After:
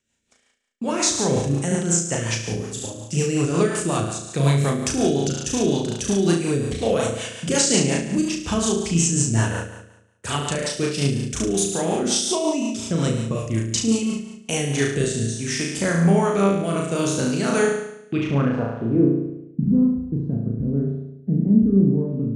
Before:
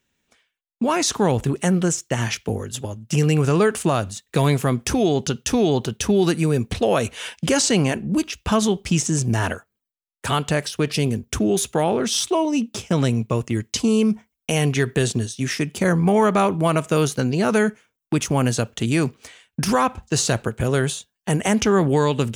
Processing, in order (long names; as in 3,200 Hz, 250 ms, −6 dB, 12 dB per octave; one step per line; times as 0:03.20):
low-pass filter sweep 8,100 Hz → 240 Hz, 0:17.72–0:19.20
flutter between parallel walls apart 6.1 metres, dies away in 0.91 s
rotating-speaker cabinet horn 5.5 Hz, later 0.6 Hz, at 0:14.25
level −3.5 dB